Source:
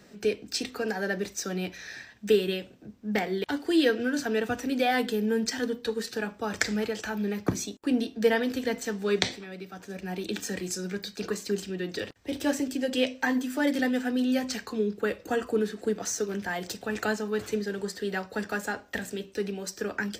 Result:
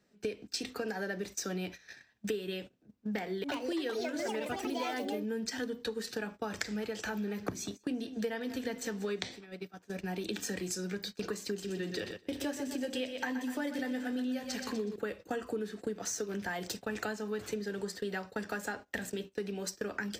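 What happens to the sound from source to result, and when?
2.94–5.46 s: ever faster or slower copies 417 ms, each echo +5 st, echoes 2
6.86–9.21 s: modulated delay 188 ms, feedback 42%, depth 55 cents, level -19 dB
11.52–14.96 s: feedback delay 123 ms, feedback 50%, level -9 dB
whole clip: gate -39 dBFS, range -18 dB; compression 6:1, threshold -33 dBFS

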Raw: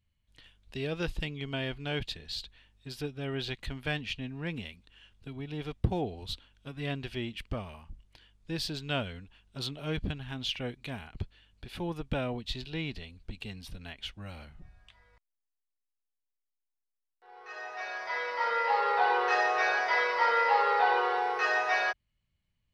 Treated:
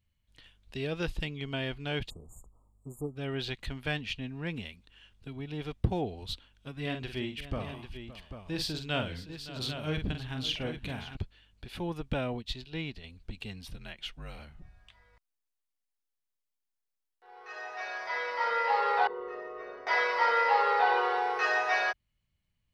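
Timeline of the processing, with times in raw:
2.10–3.16 s: spectral selection erased 1.3–6.7 kHz
6.81–11.17 s: multi-tap echo 46/566/794 ms -7/-15/-9.5 dB
12.42–13.04 s: upward expansion, over -46 dBFS
13.76–14.39 s: frequency shift -48 Hz
19.07–19.87 s: boxcar filter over 55 samples

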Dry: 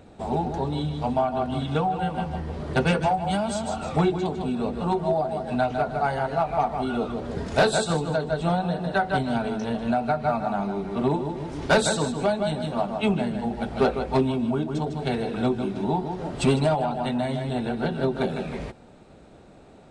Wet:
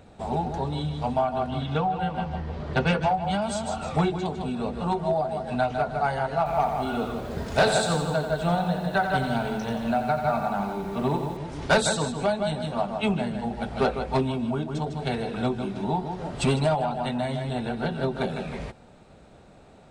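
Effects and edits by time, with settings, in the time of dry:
1.50–3.42 s: low-pass 5.4 kHz
6.37–11.37 s: bit-crushed delay 88 ms, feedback 55%, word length 8-bit, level -8 dB
whole clip: peaking EQ 320 Hz -5 dB 1 oct

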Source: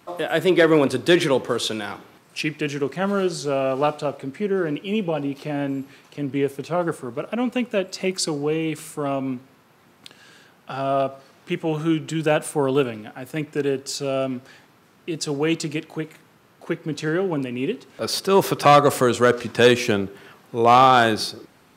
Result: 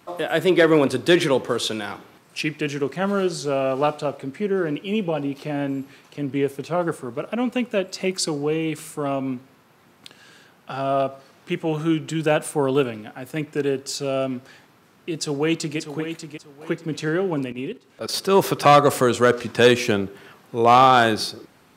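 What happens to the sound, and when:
15.14–15.78 s: echo throw 590 ms, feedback 25%, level -9 dB
17.52–18.14 s: level held to a coarse grid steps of 14 dB

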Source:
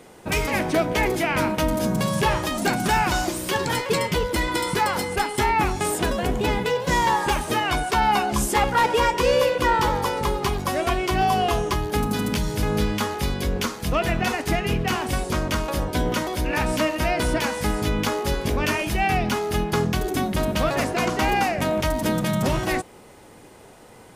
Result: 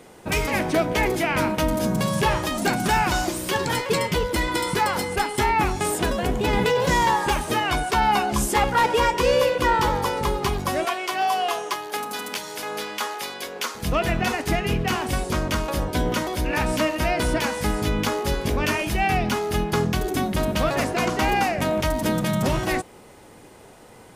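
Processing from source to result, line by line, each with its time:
6.53–7.11 s: level flattener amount 70%
10.85–13.75 s: high-pass 580 Hz

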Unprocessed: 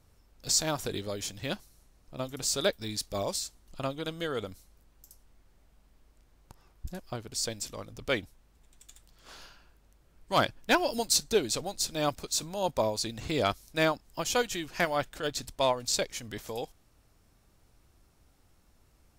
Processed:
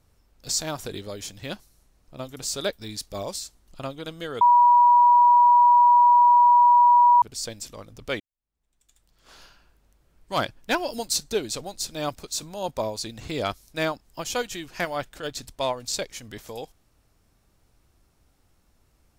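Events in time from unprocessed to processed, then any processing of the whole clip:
4.41–7.22 s: bleep 967 Hz -12 dBFS
8.20–9.41 s: fade in quadratic

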